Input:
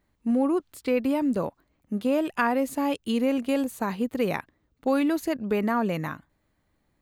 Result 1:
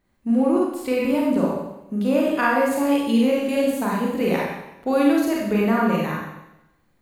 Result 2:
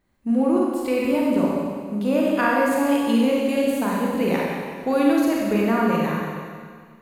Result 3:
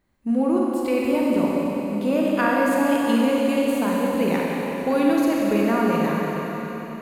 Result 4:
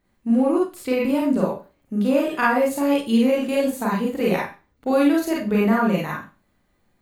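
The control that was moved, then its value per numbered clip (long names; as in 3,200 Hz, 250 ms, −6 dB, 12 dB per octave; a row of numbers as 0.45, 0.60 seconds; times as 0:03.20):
four-comb reverb, RT60: 0.9, 1.9, 4.2, 0.31 seconds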